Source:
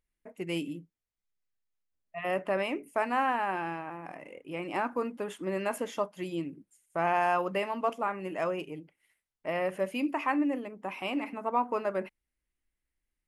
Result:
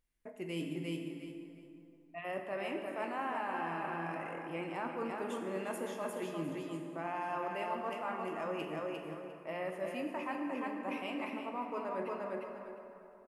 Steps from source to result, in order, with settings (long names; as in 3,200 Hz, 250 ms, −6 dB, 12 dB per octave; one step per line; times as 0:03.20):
repeating echo 352 ms, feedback 21%, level −7 dB
reversed playback
downward compressor, threshold −37 dBFS, peak gain reduction 14 dB
reversed playback
dense smooth reverb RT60 3.1 s, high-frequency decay 0.5×, DRR 3 dB